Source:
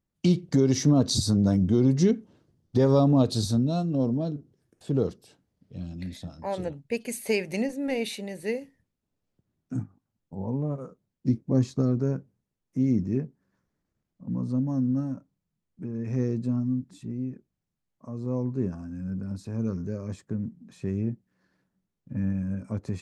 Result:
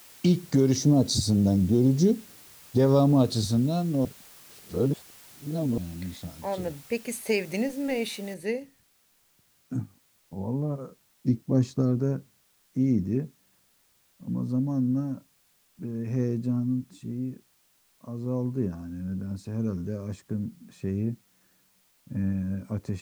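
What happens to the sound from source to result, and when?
0:00.76–0:02.78: flat-topped bell 1,800 Hz −10.5 dB
0:04.05–0:05.78: reverse
0:08.34: noise floor change −51 dB −66 dB

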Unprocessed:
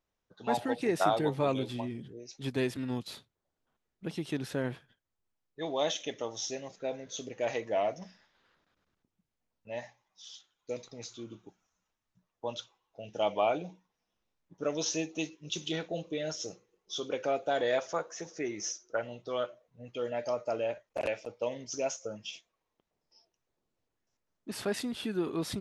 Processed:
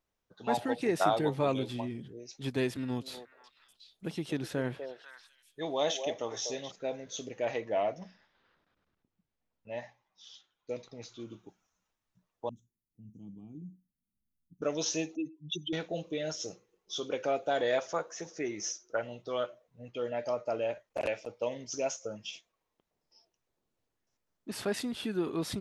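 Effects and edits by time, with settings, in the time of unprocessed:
0:02.70–0:06.72: echo through a band-pass that steps 246 ms, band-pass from 560 Hz, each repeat 1.4 octaves, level −5 dB
0:07.40–0:11.20: high-frequency loss of the air 110 metres
0:12.49–0:14.62: elliptic band-stop filter 240–9,800 Hz
0:15.15–0:15.73: expanding power law on the bin magnitudes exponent 2.7
0:19.88–0:20.62: high-frequency loss of the air 63 metres

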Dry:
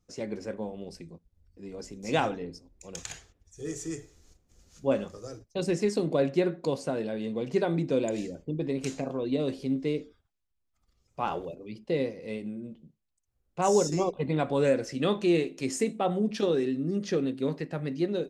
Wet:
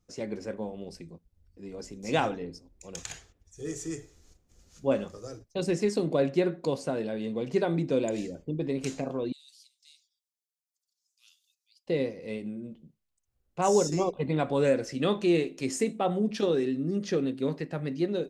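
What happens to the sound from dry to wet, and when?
0:09.32–0:11.87: inverse Chebyshev high-pass filter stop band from 770 Hz, stop band 80 dB

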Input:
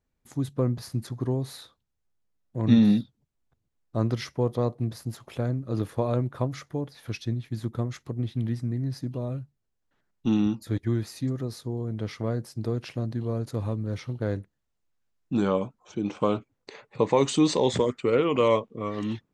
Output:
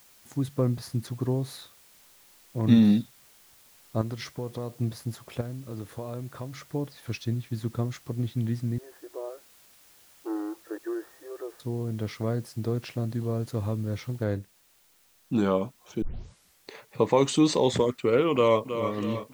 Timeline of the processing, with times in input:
0:04.01–0:04.79: downward compressor 2.5 to 1, threshold −32 dBFS
0:05.41–0:06.71: downward compressor 2 to 1, threshold −39 dBFS
0:08.78–0:11.60: linear-phase brick-wall band-pass 310–1,900 Hz
0:14.24: noise floor change −57 dB −63 dB
0:16.02: tape start 0.68 s
0:18.33–0:18.91: delay throw 320 ms, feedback 55%, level −9.5 dB

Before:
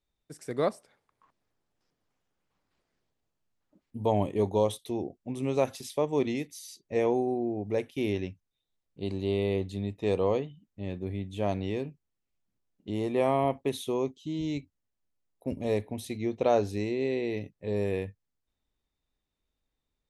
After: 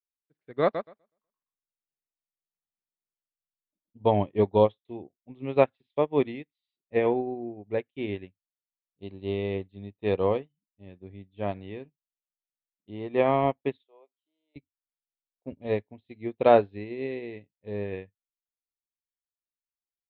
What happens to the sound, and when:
0:00.62–0:04.03: repeating echo 124 ms, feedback 41%, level −3.5 dB
0:13.83–0:14.56: four-pole ladder high-pass 490 Hz, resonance 45%
whole clip: Butterworth low-pass 3,800 Hz 48 dB per octave; dynamic equaliser 1,700 Hz, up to +4 dB, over −49 dBFS, Q 1.7; expander for the loud parts 2.5 to 1, over −46 dBFS; level +8 dB

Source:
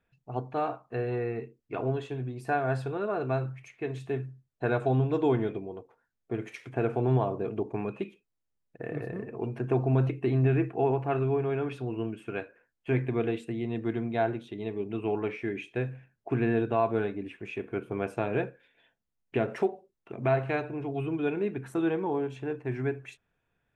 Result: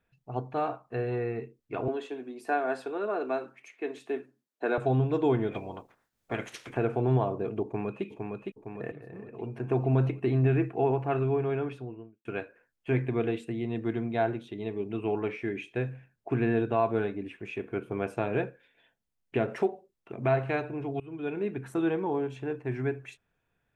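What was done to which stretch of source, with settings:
0:01.88–0:04.78: Butterworth high-pass 230 Hz
0:05.51–0:06.76: ceiling on every frequency bin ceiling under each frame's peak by 20 dB
0:07.64–0:08.05: delay throw 460 ms, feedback 60%, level −4 dB
0:08.92–0:09.88: fade in, from −14.5 dB
0:11.50–0:12.25: fade out and dull
0:16.49–0:16.89: floating-point word with a short mantissa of 8 bits
0:21.00–0:21.70: fade in equal-power, from −21 dB

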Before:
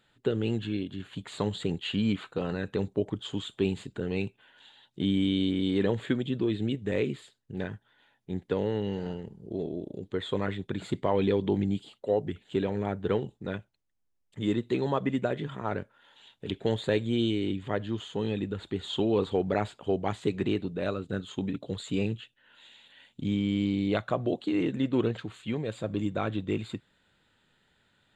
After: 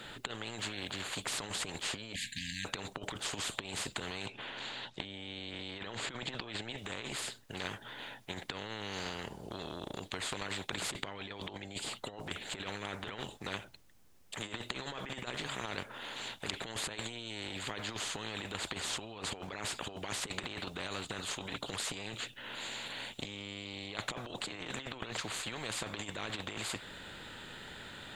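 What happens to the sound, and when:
0:02.13–0:02.65: linear-phase brick-wall band-stop 260–1,600 Hz
0:04.26–0:06.78: low-pass filter 6,000 Hz
0:09.08–0:10.42: downward compressor, threshold −32 dBFS
whole clip: compressor whose output falls as the input rises −33 dBFS, ratio −0.5; every bin compressed towards the loudest bin 4 to 1

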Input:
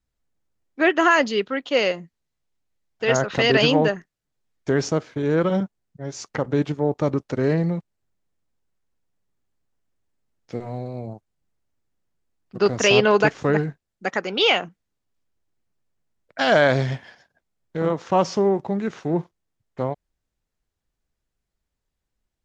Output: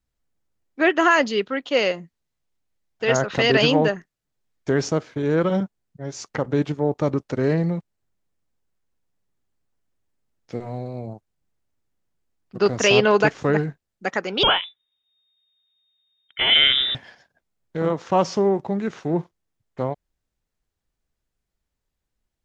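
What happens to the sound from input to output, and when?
0:14.43–0:16.95: voice inversion scrambler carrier 3,700 Hz

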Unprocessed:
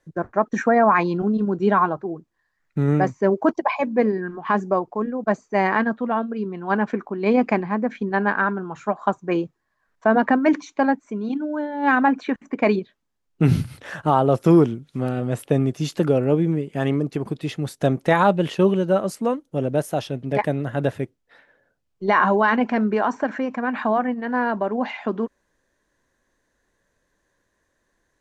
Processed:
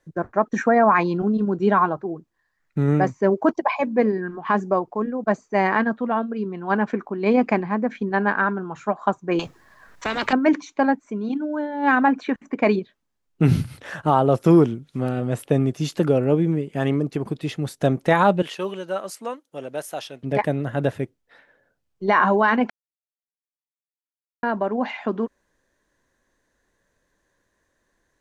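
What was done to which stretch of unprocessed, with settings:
0:09.39–0:10.33: every bin compressed towards the loudest bin 4 to 1
0:18.42–0:20.23: high-pass filter 1,200 Hz 6 dB per octave
0:22.70–0:24.43: silence

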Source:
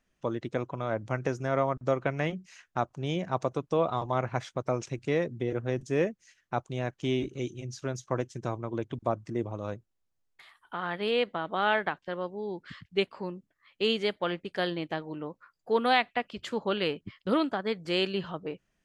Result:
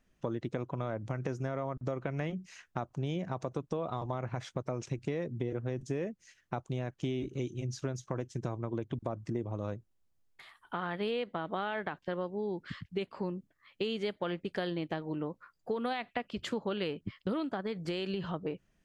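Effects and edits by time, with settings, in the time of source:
0:17.60–0:18.25: downward compressor, threshold −31 dBFS
whole clip: low-shelf EQ 430 Hz +6 dB; brickwall limiter −16.5 dBFS; downward compressor, threshold −31 dBFS

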